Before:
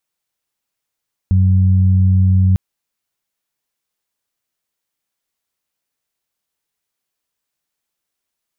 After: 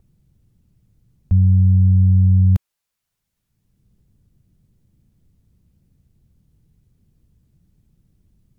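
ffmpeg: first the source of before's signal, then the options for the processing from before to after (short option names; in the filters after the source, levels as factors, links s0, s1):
-f lavfi -i "aevalsrc='0.355*sin(2*PI*93.9*t)+0.119*sin(2*PI*187.8*t)':d=1.25:s=44100"
-filter_complex "[0:a]acrossover=split=210[s0][s1];[s0]acompressor=mode=upward:threshold=0.0562:ratio=2.5[s2];[s2][s1]amix=inputs=2:normalize=0,equalizer=f=270:w=1.6:g=-5.5" -ar 48000 -c:a aac -b:a 192k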